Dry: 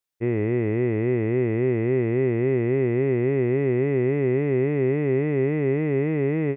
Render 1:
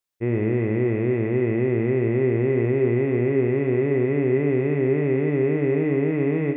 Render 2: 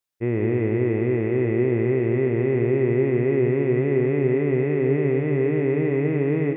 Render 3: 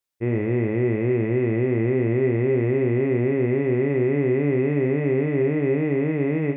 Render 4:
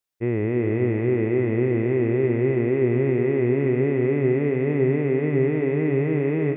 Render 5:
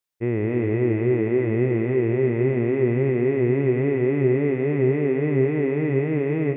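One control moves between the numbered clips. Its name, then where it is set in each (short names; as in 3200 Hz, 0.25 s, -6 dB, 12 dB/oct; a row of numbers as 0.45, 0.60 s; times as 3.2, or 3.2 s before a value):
non-linear reverb, gate: 120, 200, 80, 480, 320 ms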